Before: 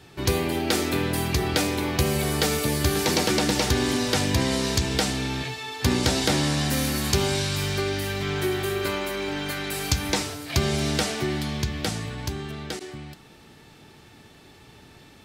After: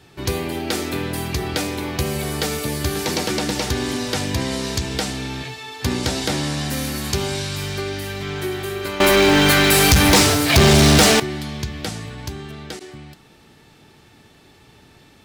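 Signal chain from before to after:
0:09.00–0:11.20: leveller curve on the samples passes 5

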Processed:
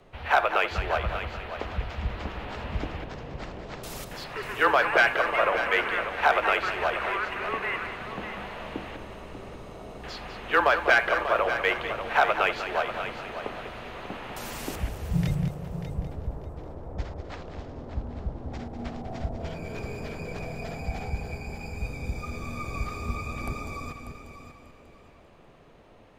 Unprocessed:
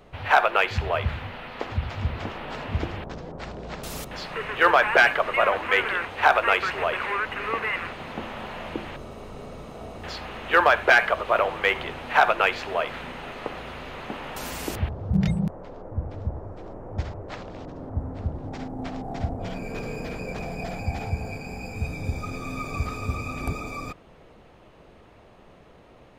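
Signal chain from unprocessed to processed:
frequency shifter −21 Hz
echo machine with several playback heads 197 ms, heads first and third, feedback 40%, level −10.5 dB
level −3.5 dB

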